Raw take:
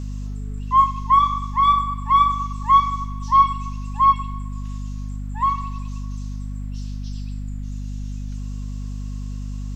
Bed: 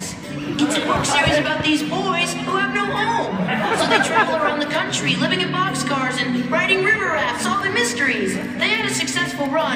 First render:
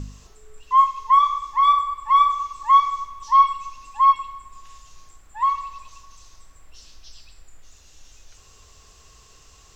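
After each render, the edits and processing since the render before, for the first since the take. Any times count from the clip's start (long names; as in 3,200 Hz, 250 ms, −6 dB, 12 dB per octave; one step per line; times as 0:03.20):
hum removal 50 Hz, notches 5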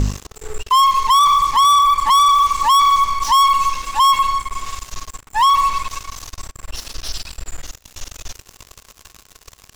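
leveller curve on the samples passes 5
brickwall limiter −10 dBFS, peak gain reduction 4 dB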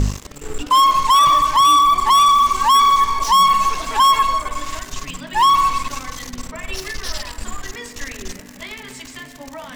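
mix in bed −15 dB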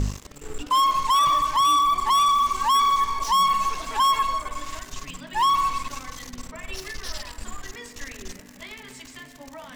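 level −7 dB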